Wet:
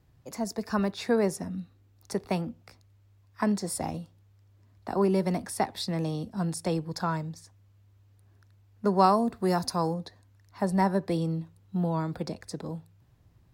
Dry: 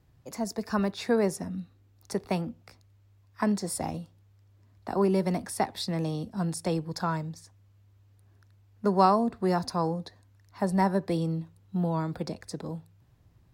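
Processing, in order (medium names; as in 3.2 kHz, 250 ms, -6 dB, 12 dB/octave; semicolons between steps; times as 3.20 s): 9.03–9.93 s: treble shelf 9 kHz -> 5.5 kHz +10.5 dB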